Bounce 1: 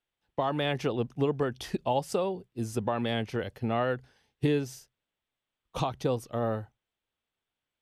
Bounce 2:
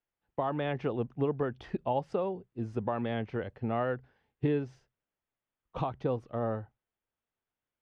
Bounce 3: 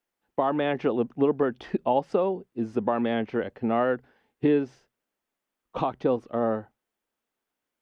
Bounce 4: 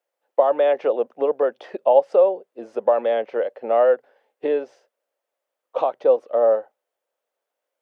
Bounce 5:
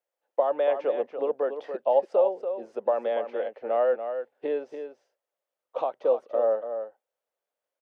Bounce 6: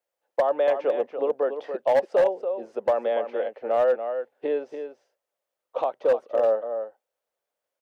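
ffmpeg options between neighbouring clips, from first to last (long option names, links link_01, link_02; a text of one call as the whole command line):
ffmpeg -i in.wav -af "lowpass=2000,volume=-2.5dB" out.wav
ffmpeg -i in.wav -af "lowshelf=frequency=170:width_type=q:width=1.5:gain=-8.5,volume=6.5dB" out.wav
ffmpeg -i in.wav -af "highpass=frequency=550:width_type=q:width=4.9,volume=-1dB" out.wav
ffmpeg -i in.wav -af "aecho=1:1:286:0.376,volume=-7dB" out.wav
ffmpeg -i in.wav -af "asoftclip=type=hard:threshold=-17dB,volume=2.5dB" out.wav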